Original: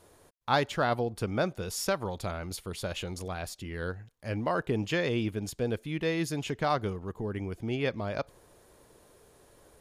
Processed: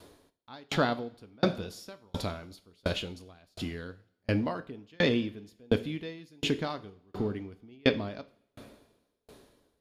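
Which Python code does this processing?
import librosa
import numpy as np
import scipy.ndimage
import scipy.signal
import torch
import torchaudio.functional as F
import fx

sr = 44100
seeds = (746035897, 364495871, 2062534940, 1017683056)

y = fx.graphic_eq_10(x, sr, hz=(250, 4000, 8000), db=(8, 8, -5))
y = fx.rev_double_slope(y, sr, seeds[0], early_s=0.51, late_s=3.1, knee_db=-14, drr_db=8.5)
y = fx.tremolo_decay(y, sr, direction='decaying', hz=1.4, depth_db=38)
y = F.gain(torch.from_numpy(y), 5.0).numpy()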